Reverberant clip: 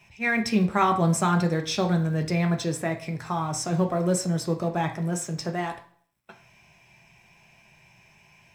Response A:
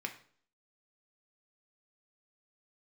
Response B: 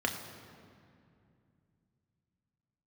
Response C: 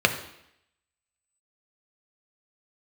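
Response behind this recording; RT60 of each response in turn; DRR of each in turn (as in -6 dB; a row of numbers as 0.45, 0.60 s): A; 0.50, 2.5, 0.75 s; 3.5, 2.0, 5.0 dB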